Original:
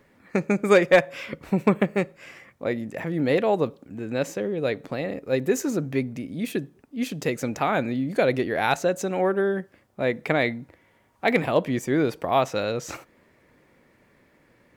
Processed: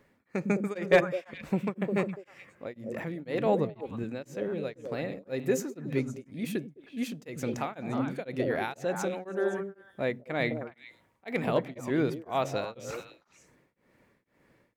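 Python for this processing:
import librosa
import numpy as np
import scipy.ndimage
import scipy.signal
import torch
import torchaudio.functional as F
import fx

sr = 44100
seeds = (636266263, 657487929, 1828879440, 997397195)

y = fx.low_shelf(x, sr, hz=180.0, db=10.5, at=(3.46, 4.04))
y = fx.echo_stepped(y, sr, ms=104, hz=160.0, octaves=1.4, feedback_pct=70, wet_db=-1.5)
y = y * np.abs(np.cos(np.pi * 2.0 * np.arange(len(y)) / sr))
y = F.gain(torch.from_numpy(y), -5.0).numpy()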